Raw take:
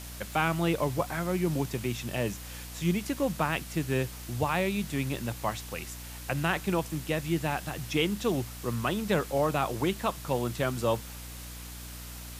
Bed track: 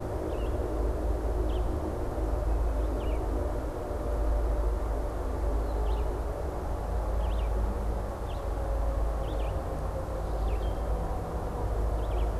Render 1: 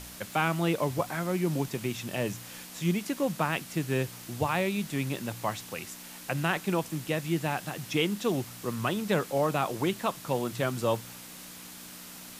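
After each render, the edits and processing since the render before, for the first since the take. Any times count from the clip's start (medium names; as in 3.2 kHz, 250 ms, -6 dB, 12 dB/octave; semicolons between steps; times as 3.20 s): de-hum 60 Hz, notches 2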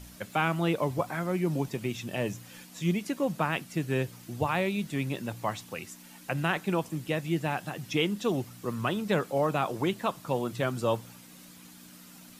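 noise reduction 9 dB, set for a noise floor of -46 dBFS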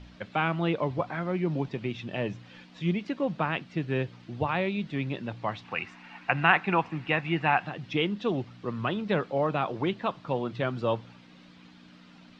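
5.65–7.67 s: time-frequency box 680–2900 Hz +9 dB; low-pass 4.1 kHz 24 dB/octave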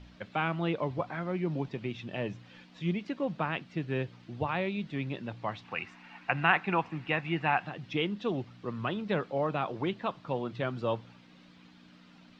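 trim -3.5 dB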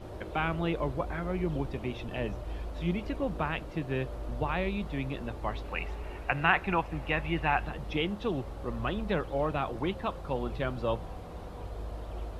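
add bed track -9.5 dB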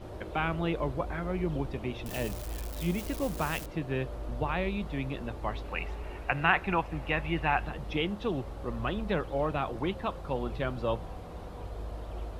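2.06–3.66 s: zero-crossing glitches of -29.5 dBFS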